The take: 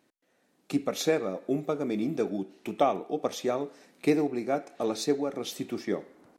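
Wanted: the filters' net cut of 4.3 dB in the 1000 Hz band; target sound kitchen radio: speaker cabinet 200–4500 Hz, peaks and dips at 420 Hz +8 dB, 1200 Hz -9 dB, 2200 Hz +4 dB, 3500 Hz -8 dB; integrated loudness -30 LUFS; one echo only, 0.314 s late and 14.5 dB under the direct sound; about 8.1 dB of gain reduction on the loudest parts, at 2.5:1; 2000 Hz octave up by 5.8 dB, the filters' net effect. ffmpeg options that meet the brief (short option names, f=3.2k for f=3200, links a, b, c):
-af "equalizer=f=1k:t=o:g=-7,equalizer=f=2k:t=o:g=7,acompressor=threshold=-33dB:ratio=2.5,highpass=200,equalizer=f=420:t=q:w=4:g=8,equalizer=f=1.2k:t=q:w=4:g=-9,equalizer=f=2.2k:t=q:w=4:g=4,equalizer=f=3.5k:t=q:w=4:g=-8,lowpass=f=4.5k:w=0.5412,lowpass=f=4.5k:w=1.3066,aecho=1:1:314:0.188,volume=4.5dB"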